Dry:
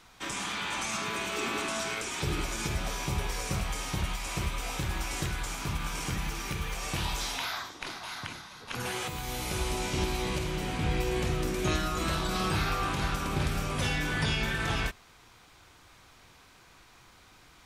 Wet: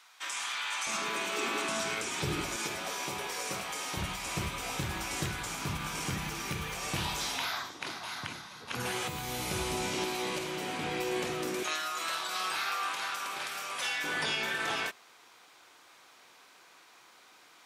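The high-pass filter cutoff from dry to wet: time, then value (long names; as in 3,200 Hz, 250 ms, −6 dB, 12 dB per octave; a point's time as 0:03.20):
1,000 Hz
from 0:00.87 260 Hz
from 0:01.69 110 Hz
from 0:02.56 320 Hz
from 0:03.97 100 Hz
from 0:09.93 280 Hz
from 0:11.63 880 Hz
from 0:14.04 380 Hz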